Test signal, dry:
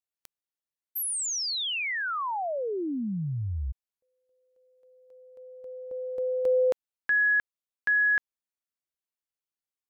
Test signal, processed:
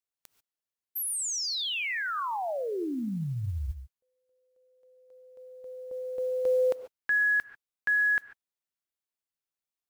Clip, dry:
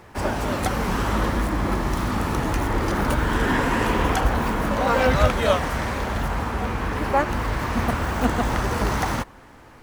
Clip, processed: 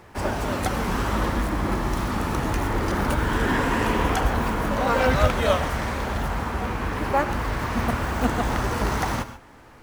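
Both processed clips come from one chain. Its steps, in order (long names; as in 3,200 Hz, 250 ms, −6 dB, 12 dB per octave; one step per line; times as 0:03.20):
reverb whose tail is shaped and stops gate 160 ms rising, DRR 11.5 dB
noise that follows the level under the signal 33 dB
level −1.5 dB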